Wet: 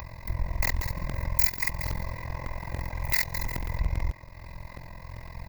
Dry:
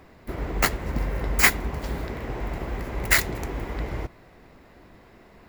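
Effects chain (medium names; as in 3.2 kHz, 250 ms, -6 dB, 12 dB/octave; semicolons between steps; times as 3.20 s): octave divider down 1 oct, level +3 dB; 0.90–3.31 s: bass shelf 88 Hz -9.5 dB; thinning echo 182 ms, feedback 29%, level -10.5 dB; upward compressor, threshold -27 dBFS; AM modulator 43 Hz, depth 85%; compression 5:1, threshold -24 dBFS, peak gain reduction 10 dB; treble shelf 9.1 kHz +8 dB; static phaser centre 2.1 kHz, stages 8; comb 2 ms, depth 66%; crackling interface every 0.11 s, samples 2048, repeat, from 0.50 s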